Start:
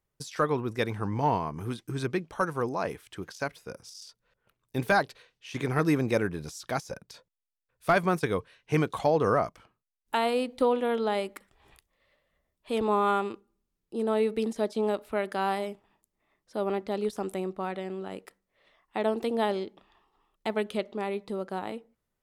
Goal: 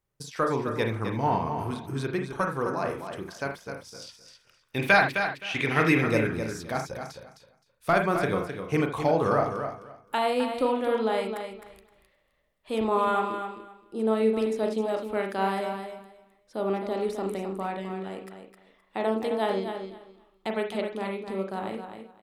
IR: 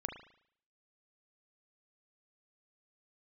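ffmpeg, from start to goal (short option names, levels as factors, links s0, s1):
-filter_complex "[0:a]asettb=1/sr,asplit=3[s0][s1][s2];[s0]atrim=end=4.004[s3];[s1]atrim=start=4:end=6.04,asetpts=PTS-STARTPTS,afade=t=in:d=0.004:c=qsin,afade=t=out:st=2.036:d=0.004:c=qsin,equalizer=f=2500:w=0.96:g=12.5[s4];[s2]atrim=start=6.036[s5];[s3][s4]acrossfade=d=0.004:c1=hsin:c2=qsin[s6];[s6][s5]acrossfade=d=0.004:c1=qsin:c2=hsin,aecho=1:1:260|520|780:0.398|0.0756|0.0144[s7];[1:a]atrim=start_sample=2205,afade=t=out:st=0.14:d=0.01,atrim=end_sample=6615[s8];[s7][s8]afir=irnorm=-1:irlink=0,volume=1.12"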